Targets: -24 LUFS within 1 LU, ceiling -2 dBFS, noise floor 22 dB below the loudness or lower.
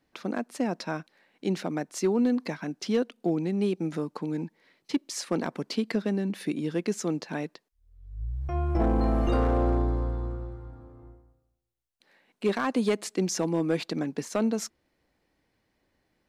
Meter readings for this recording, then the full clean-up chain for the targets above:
clipped samples 0.4%; clipping level -17.5 dBFS; loudness -29.5 LUFS; peak level -17.5 dBFS; loudness target -24.0 LUFS
-> clip repair -17.5 dBFS; trim +5.5 dB

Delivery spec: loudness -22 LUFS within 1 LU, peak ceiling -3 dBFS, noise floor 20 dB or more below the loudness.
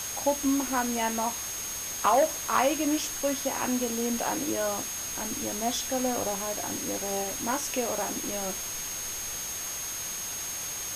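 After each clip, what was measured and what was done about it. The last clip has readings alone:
steady tone 6.5 kHz; tone level -35 dBFS; noise floor -35 dBFS; noise floor target -49 dBFS; loudness -28.5 LUFS; peak level -12.0 dBFS; loudness target -22.0 LUFS
-> band-stop 6.5 kHz, Q 30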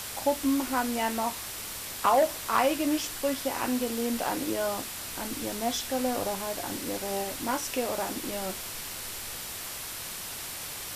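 steady tone not found; noise floor -38 dBFS; noise floor target -50 dBFS
-> noise print and reduce 12 dB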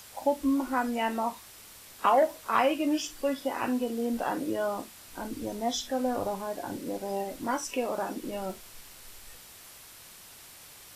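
noise floor -50 dBFS; noise floor target -51 dBFS
-> noise print and reduce 6 dB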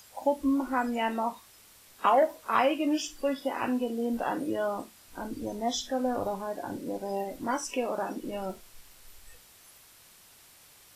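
noise floor -56 dBFS; loudness -30.5 LUFS; peak level -13.0 dBFS; loudness target -22.0 LUFS
-> trim +8.5 dB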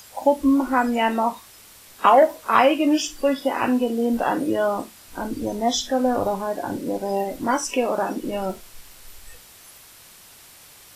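loudness -22.0 LUFS; peak level -4.5 dBFS; noise floor -48 dBFS

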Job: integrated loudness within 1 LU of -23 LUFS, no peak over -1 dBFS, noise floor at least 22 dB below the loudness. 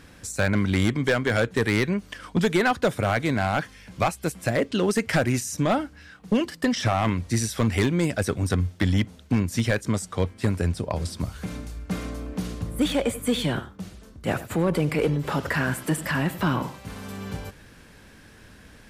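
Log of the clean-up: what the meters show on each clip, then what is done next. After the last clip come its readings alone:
clipped samples 0.8%; clipping level -14.5 dBFS; loudness -25.5 LUFS; peak level -14.5 dBFS; loudness target -23.0 LUFS
-> clip repair -14.5 dBFS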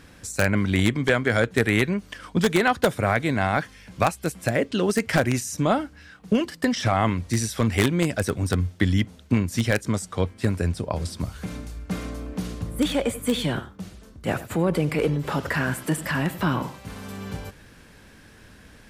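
clipped samples 0.0%; loudness -24.5 LUFS; peak level -5.5 dBFS; loudness target -23.0 LUFS
-> trim +1.5 dB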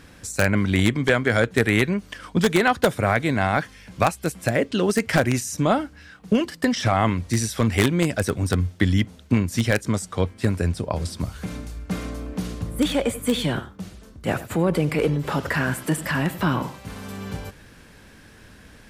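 loudness -23.0 LUFS; peak level -4.0 dBFS; noise floor -49 dBFS

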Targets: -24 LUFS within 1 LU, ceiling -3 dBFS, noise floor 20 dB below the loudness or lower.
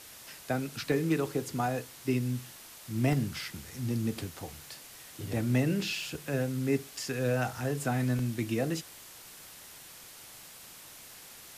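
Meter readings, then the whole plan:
dropouts 5; longest dropout 1.7 ms; noise floor -50 dBFS; noise floor target -52 dBFS; loudness -32.0 LUFS; peak level -15.0 dBFS; loudness target -24.0 LUFS
-> interpolate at 0.92/3.13/6.02/7.64/8.19 s, 1.7 ms; noise reduction 6 dB, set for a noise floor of -50 dBFS; trim +8 dB

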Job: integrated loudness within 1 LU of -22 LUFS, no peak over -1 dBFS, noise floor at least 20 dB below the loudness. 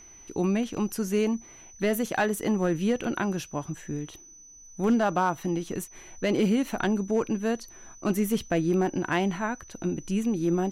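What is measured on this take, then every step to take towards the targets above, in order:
clipped samples 0.5%; clipping level -16.5 dBFS; steady tone 6 kHz; tone level -48 dBFS; loudness -28.0 LUFS; peak level -16.5 dBFS; loudness target -22.0 LUFS
-> clip repair -16.5 dBFS; band-stop 6 kHz, Q 30; trim +6 dB

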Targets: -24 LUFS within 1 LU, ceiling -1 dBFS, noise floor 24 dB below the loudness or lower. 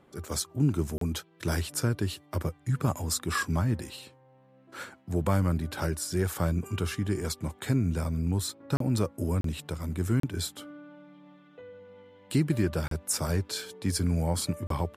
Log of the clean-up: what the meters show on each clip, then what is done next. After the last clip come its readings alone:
dropouts 6; longest dropout 33 ms; loudness -30.0 LUFS; peak level -14.5 dBFS; loudness target -24.0 LUFS
-> interpolate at 0.98/8.77/9.41/10.20/12.88/14.67 s, 33 ms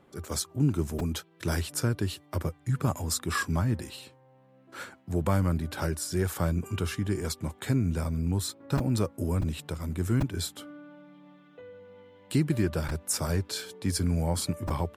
dropouts 0; loudness -30.0 LUFS; peak level -14.5 dBFS; loudness target -24.0 LUFS
-> trim +6 dB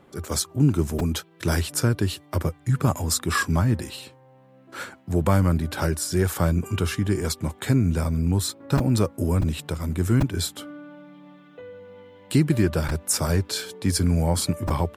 loudness -24.0 LUFS; peak level -8.5 dBFS; noise floor -53 dBFS

